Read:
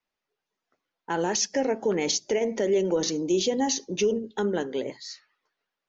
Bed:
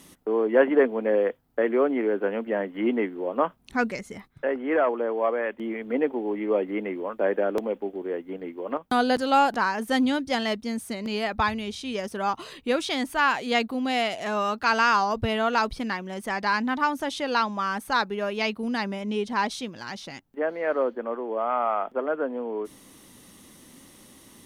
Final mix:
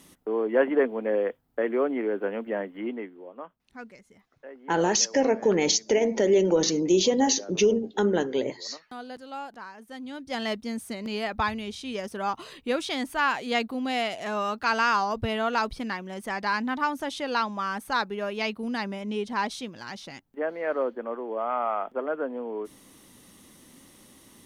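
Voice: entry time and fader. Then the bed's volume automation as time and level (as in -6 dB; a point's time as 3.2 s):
3.60 s, +3.0 dB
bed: 2.59 s -3 dB
3.44 s -17.5 dB
10.01 s -17.5 dB
10.44 s -2.5 dB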